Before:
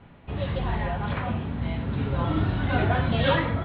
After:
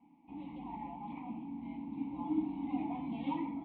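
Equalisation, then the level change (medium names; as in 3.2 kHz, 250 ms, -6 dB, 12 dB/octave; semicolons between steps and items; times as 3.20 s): vowel filter u; treble shelf 3.1 kHz -8.5 dB; static phaser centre 400 Hz, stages 6; +2.0 dB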